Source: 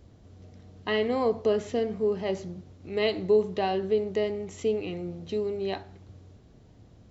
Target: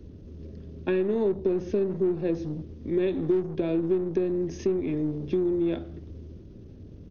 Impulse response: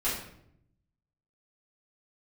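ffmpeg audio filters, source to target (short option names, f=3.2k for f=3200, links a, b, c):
-filter_complex "[0:a]lowshelf=f=630:t=q:w=1.5:g=10,acrossover=split=250[a][b];[a]aeval=exprs='(tanh(70.8*val(0)+0.4)-tanh(0.4))/70.8':c=same[c];[b]acompressor=threshold=-24dB:ratio=6[d];[c][d]amix=inputs=2:normalize=0,asetrate=38170,aresample=44100,atempo=1.15535"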